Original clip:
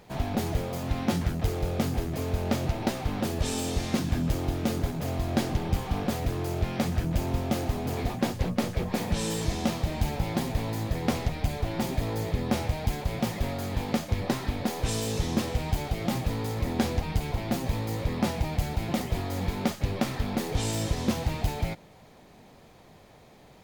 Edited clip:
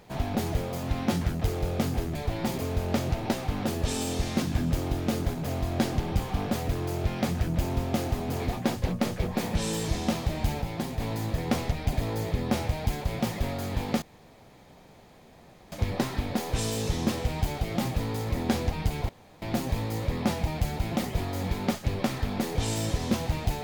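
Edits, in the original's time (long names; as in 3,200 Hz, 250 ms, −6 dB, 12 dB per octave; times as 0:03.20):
0:10.19–0:10.57: clip gain −3.5 dB
0:11.50–0:11.93: move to 0:02.15
0:14.02: splice in room tone 1.70 s
0:17.39: splice in room tone 0.33 s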